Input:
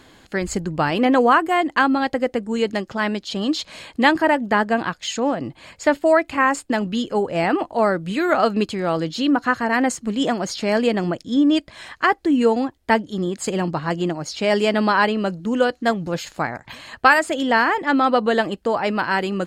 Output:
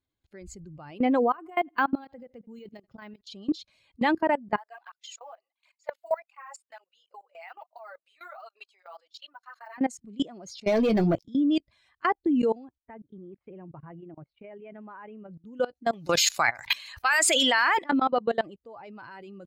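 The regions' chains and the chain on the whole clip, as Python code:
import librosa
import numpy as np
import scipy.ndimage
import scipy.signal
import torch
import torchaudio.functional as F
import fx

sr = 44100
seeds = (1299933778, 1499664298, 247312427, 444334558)

y = fx.chain(x, sr, fx.chopper(hz=5.5, depth_pct=65, duty_pct=65),
    fx.echo_feedback(ms=82, feedback_pct=35, wet_db=-21.5),
    fx.resample_linear(factor=2), at=(1.2, 3.21))
y = fx.chain(y, sr, fx.highpass(hz=670.0, slope=24),
    fx.quant_float(bits=4),
    fx.flanger_cancel(hz=1.4, depth_ms=5.9), at=(4.57, 9.78))
y = fx.chain(y, sr, fx.doubler(ms=18.0, db=-12.0),
    fx.leveller(passes=3), at=(10.67, 11.24))
y = fx.chain(y, sr, fx.lowpass(hz=2500.0, slope=24),
    fx.level_steps(step_db=10), at=(12.78, 15.31))
y = fx.chain(y, sr, fx.tilt_shelf(db=-10.0, hz=690.0),
    fx.env_flatten(amount_pct=50), at=(15.93, 17.84))
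y = fx.bin_expand(y, sr, power=1.5)
y = fx.level_steps(y, sr, step_db=22)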